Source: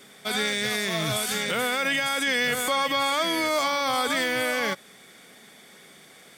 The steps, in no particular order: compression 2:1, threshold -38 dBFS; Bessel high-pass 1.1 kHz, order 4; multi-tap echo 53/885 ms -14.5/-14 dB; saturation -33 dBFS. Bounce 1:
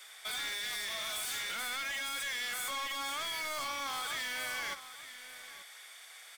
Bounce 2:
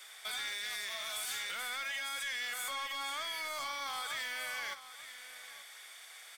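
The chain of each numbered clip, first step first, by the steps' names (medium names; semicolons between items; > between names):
Bessel high-pass > saturation > compression > multi-tap echo; compression > Bessel high-pass > saturation > multi-tap echo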